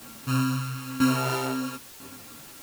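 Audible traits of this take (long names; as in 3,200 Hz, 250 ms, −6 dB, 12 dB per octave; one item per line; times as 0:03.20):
a buzz of ramps at a fixed pitch in blocks of 32 samples
tremolo saw down 1 Hz, depth 85%
a quantiser's noise floor 8 bits, dither triangular
a shimmering, thickened sound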